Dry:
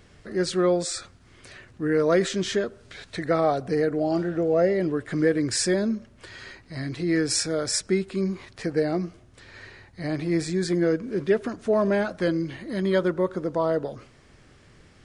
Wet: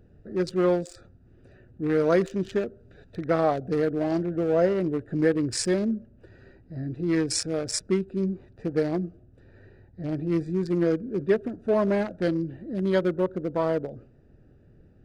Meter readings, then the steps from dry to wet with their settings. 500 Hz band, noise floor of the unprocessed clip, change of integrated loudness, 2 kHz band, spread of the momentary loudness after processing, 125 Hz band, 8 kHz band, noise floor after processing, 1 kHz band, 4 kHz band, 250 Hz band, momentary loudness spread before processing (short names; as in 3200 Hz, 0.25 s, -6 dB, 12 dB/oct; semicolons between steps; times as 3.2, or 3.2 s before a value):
-1.5 dB, -54 dBFS, -1.5 dB, -4.5 dB, 10 LU, 0.0 dB, -4.5 dB, -56 dBFS, -2.0 dB, -5.5 dB, -0.5 dB, 12 LU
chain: Wiener smoothing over 41 samples